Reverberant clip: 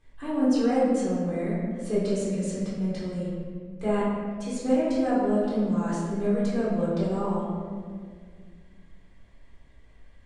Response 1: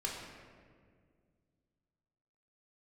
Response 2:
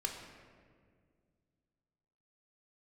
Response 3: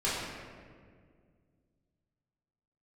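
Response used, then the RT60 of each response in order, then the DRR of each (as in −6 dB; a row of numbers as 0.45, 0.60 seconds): 3; 2.0, 2.0, 1.9 seconds; −2.0, 2.0, −9.0 decibels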